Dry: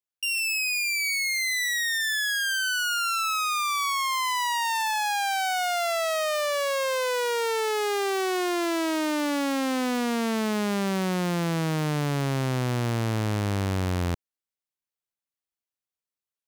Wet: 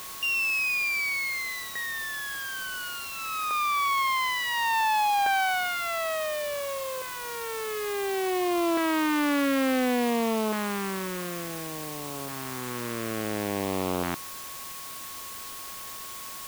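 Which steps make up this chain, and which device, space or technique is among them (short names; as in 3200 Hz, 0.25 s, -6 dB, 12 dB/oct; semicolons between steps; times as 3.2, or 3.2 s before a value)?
shortwave radio (BPF 280–2600 Hz; tremolo 0.21 Hz, depth 76%; LFO notch saw up 0.57 Hz 460–1900 Hz; whine 1100 Hz -50 dBFS; white noise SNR 11 dB); gain +5.5 dB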